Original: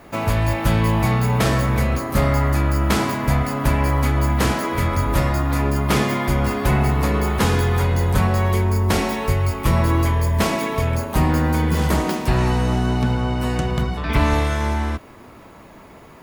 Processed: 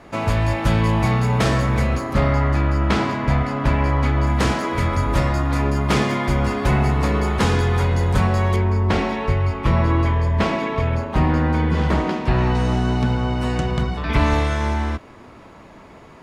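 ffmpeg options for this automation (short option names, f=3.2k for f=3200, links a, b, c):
-af "asetnsamples=n=441:p=0,asendcmd='2.13 lowpass f 4300;4.27 lowpass f 7400;8.56 lowpass f 3500;12.55 lowpass f 7300',lowpass=7.7k"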